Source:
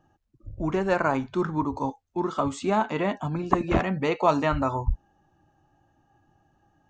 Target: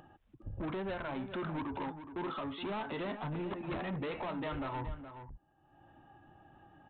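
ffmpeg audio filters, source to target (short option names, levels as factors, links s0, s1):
-filter_complex "[0:a]lowshelf=f=140:g=-6,agate=range=0.0398:threshold=0.00355:ratio=16:detection=peak,acompressor=threshold=0.0398:ratio=3,alimiter=limit=0.0794:level=0:latency=1:release=184,acompressor=mode=upward:threshold=0.02:ratio=2.5,aresample=8000,asoftclip=type=tanh:threshold=0.0158,aresample=44100,asplit=2[s0][s1];[s1]adelay=419.8,volume=0.316,highshelf=f=4000:g=-9.45[s2];[s0][s2]amix=inputs=2:normalize=0,volume=1.12"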